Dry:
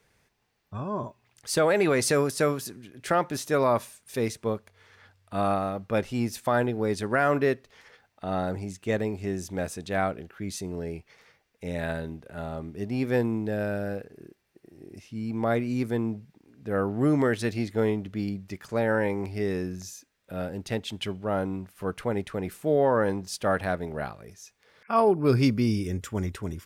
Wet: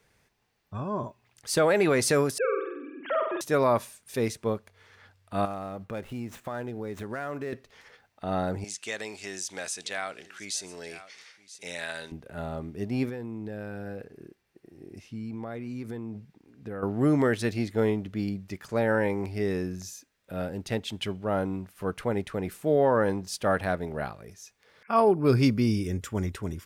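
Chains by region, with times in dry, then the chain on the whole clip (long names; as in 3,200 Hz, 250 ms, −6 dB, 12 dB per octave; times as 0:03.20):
0:02.38–0:03.41: three sine waves on the formant tracks + downward compressor 2.5 to 1, threshold −25 dBFS + flutter between parallel walls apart 8.2 metres, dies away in 0.79 s
0:05.45–0:07.53: running median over 9 samples + high-shelf EQ 8,500 Hz +4.5 dB + downward compressor 3 to 1, threshold −34 dBFS
0:08.64–0:12.12: meter weighting curve ITU-R 468 + single-tap delay 975 ms −21 dB + downward compressor 2 to 1, threshold −32 dBFS
0:13.09–0:16.83: high-shelf EQ 5,700 Hz −4 dB + notch filter 610 Hz, Q 17 + downward compressor 12 to 1, threshold −32 dBFS
whole clip: no processing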